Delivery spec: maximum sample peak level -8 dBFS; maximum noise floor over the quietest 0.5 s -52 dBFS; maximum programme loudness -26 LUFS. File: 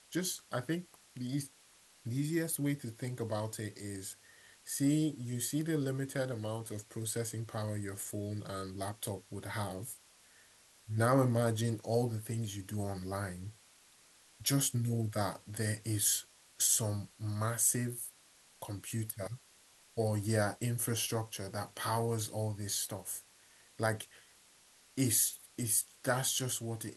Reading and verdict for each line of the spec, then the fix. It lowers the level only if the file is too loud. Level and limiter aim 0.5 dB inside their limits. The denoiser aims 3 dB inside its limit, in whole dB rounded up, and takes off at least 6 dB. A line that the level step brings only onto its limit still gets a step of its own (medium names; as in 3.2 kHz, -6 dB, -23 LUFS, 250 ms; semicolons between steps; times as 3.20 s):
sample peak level -14.0 dBFS: pass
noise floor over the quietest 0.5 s -63 dBFS: pass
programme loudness -35.0 LUFS: pass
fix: none needed